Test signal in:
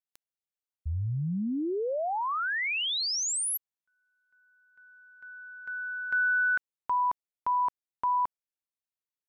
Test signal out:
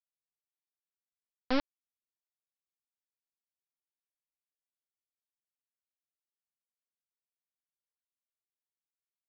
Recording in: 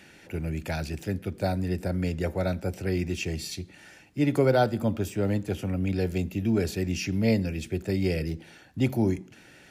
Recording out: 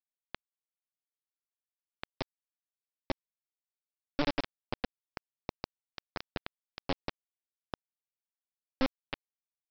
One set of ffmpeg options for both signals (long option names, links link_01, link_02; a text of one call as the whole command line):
ffmpeg -i in.wav -filter_complex "[0:a]acompressor=threshold=-34dB:ratio=16:attack=35:release=77:knee=1:detection=peak,asplit=3[link_01][link_02][link_03];[link_01]bandpass=frequency=270:width_type=q:width=8,volume=0dB[link_04];[link_02]bandpass=frequency=2290:width_type=q:width=8,volume=-6dB[link_05];[link_03]bandpass=frequency=3010:width_type=q:width=8,volume=-9dB[link_06];[link_04][link_05][link_06]amix=inputs=3:normalize=0,aeval=exprs='0.0335*(cos(1*acos(clip(val(0)/0.0335,-1,1)))-cos(1*PI/2))+0.00266*(cos(6*acos(clip(val(0)/0.0335,-1,1)))-cos(6*PI/2))+0.00168*(cos(8*acos(clip(val(0)/0.0335,-1,1)))-cos(8*PI/2))':channel_layout=same,aresample=11025,acrusher=bits=3:dc=4:mix=0:aa=0.000001,aresample=44100,volume=9dB" out.wav